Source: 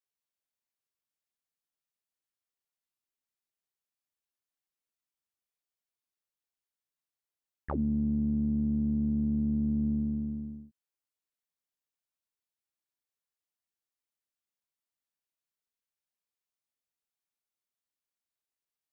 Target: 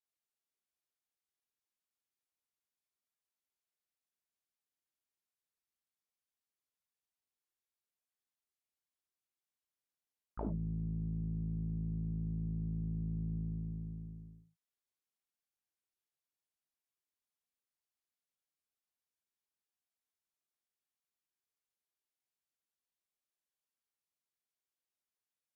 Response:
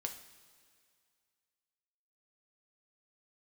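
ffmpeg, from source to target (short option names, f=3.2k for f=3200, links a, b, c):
-filter_complex "[1:a]atrim=start_sample=2205,atrim=end_sample=3528[a];[0:a][a]afir=irnorm=-1:irlink=0,asetrate=32667,aresample=44100,volume=-4dB"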